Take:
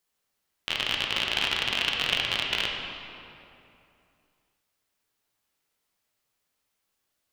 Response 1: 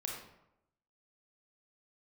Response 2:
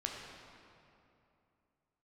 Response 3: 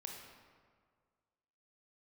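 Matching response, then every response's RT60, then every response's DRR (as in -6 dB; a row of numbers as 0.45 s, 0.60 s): 2; 0.85 s, 2.8 s, 1.9 s; -1.5 dB, -0.5 dB, 0.5 dB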